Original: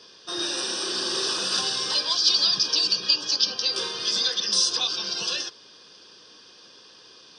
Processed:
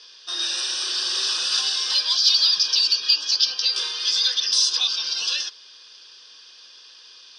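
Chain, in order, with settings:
in parallel at −3 dB: soft clipping −17.5 dBFS, distortion −14 dB
on the sum: resonant band-pass 3,700 Hz, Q 0.7

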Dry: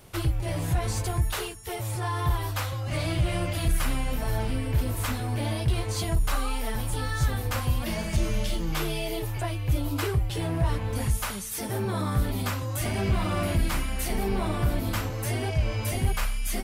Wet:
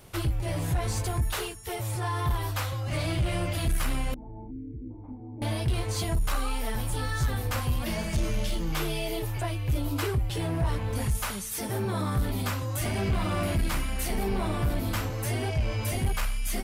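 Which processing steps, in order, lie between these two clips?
soft clipping −18.5 dBFS, distortion −19 dB
0:04.14–0:05.42: formant resonators in series u
0:04.51–0:04.91: gain on a spectral selection 510–1,400 Hz −27 dB

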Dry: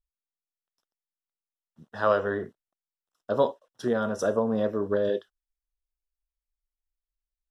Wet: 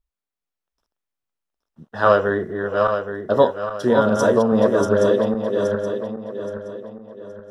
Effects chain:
feedback delay that plays each chunk backwards 411 ms, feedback 63%, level −4 dB
one half of a high-frequency compander decoder only
level +8 dB

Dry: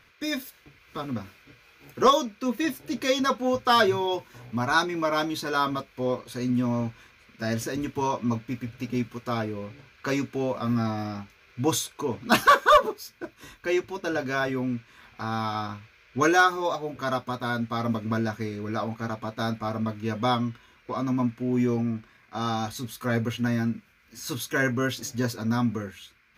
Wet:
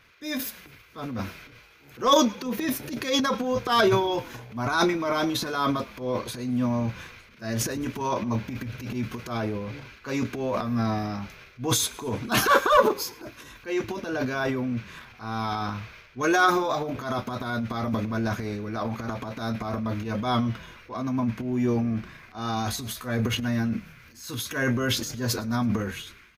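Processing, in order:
transient designer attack −9 dB, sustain +10 dB
echo with shifted repeats 108 ms, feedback 56%, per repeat −36 Hz, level −23 dB

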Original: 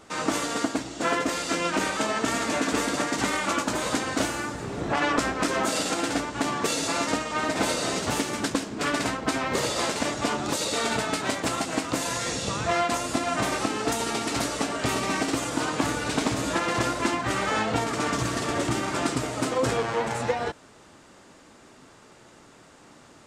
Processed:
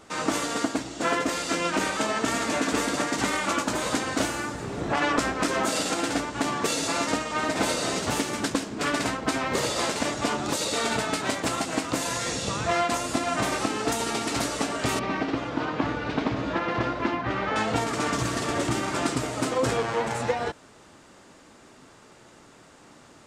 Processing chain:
0:14.99–0:17.56: high-frequency loss of the air 260 metres

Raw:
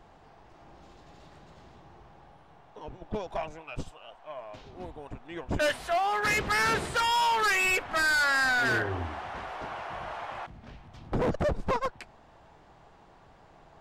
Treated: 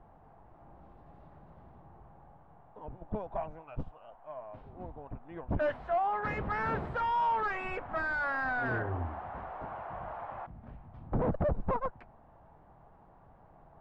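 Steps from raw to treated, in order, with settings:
low-pass filter 1,000 Hz 12 dB per octave
parametric band 380 Hz −6 dB 0.93 octaves

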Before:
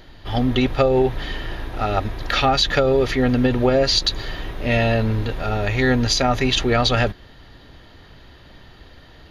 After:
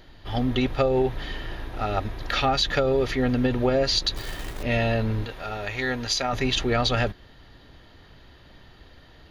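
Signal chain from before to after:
0:04.16–0:04.63: log-companded quantiser 4 bits
0:05.25–0:06.33: low-shelf EQ 410 Hz −10 dB
level −5 dB

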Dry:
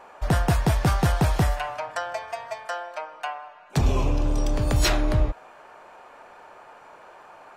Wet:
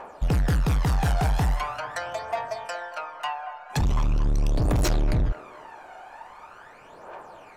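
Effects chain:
phase shifter 0.42 Hz, delay 1.4 ms, feedback 65%
soft clipping −19 dBFS, distortion −8 dB
delay with a band-pass on its return 229 ms, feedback 51%, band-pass 870 Hz, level −9.5 dB

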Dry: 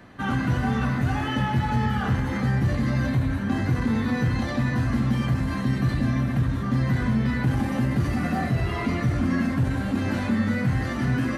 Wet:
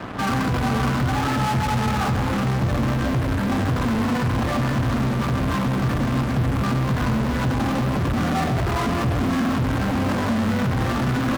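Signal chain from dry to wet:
transistor ladder low-pass 1,500 Hz, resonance 35%
in parallel at −11 dB: fuzz pedal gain 52 dB, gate −58 dBFS
on the sum: slap from a distant wall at 23 metres, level −10 dB

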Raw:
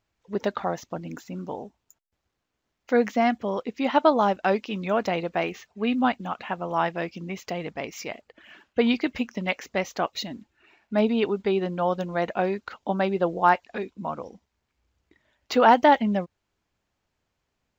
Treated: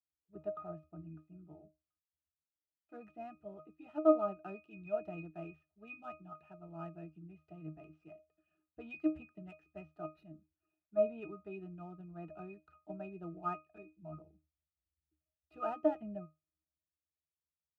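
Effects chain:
gap after every zero crossing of 0.075 ms
resonances in every octave D#, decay 0.23 s
multiband upward and downward expander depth 40%
level −3.5 dB

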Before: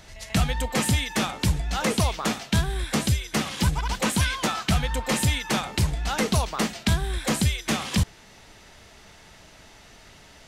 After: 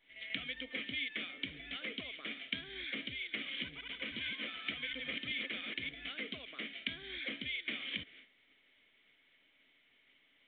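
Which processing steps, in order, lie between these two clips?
0:03.56–0:05.89: delay that plays each chunk backwards 343 ms, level −3 dB
downward expander −38 dBFS
low shelf with overshoot 390 Hz −12.5 dB, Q 1.5
downward compressor 4 to 1, threshold −35 dBFS, peak gain reduction 13 dB
formant filter i
level +11.5 dB
mu-law 64 kbit/s 8,000 Hz

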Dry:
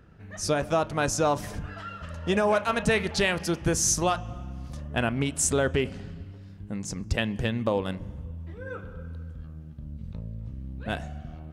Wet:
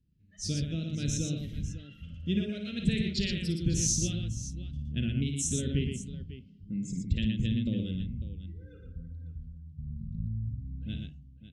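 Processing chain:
fade-out on the ending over 0.79 s
noise reduction from a noise print of the clip's start 17 dB
Chebyshev band-stop filter 210–4,100 Hz, order 2
high-frequency loss of the air 75 metres
on a send: multi-tap delay 55/118/549 ms −7.5/−5/−14 dB

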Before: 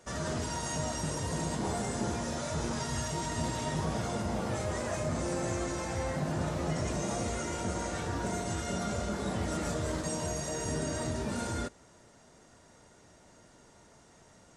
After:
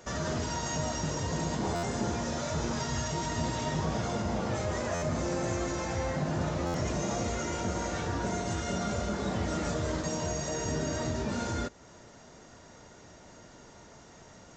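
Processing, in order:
in parallel at +0.5 dB: downward compressor, threshold −45 dBFS, peak gain reduction 15.5 dB
on the sum: downsampling to 16,000 Hz
buffer that repeats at 0:01.75/0:04.94/0:06.66, samples 512, times 6

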